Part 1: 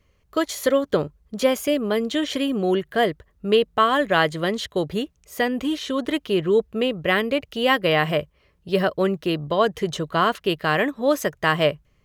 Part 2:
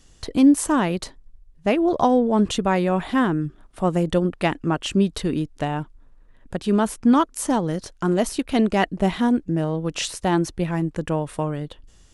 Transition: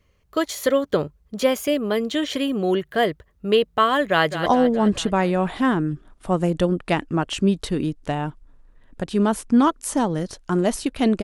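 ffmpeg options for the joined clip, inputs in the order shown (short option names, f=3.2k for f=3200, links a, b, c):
-filter_complex "[0:a]apad=whole_dur=11.23,atrim=end=11.23,atrim=end=4.462[a];[1:a]atrim=start=1.988:end=8.76[b];[a][b]acrossfade=d=0.004:c1=hsin:c2=hsin,asplit=2[c][d];[d]afade=t=in:st=4.09:d=0.01,afade=t=out:st=4.46:d=0.01,aecho=0:1:210|420|630|840|1050|1260|1470:0.298538|0.179123|0.107474|0.0644843|0.0386906|0.0232143|0.0139286[e];[c][e]amix=inputs=2:normalize=0"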